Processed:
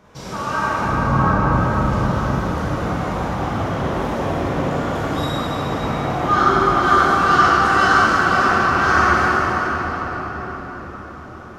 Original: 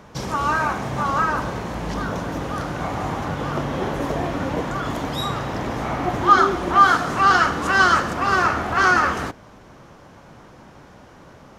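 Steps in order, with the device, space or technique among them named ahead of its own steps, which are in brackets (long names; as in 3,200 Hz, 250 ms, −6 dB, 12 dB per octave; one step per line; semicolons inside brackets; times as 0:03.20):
0:00.83–0:01.52: spectral tilt −3.5 dB per octave
cathedral (convolution reverb RT60 6.1 s, pre-delay 12 ms, DRR −10.5 dB)
level −8 dB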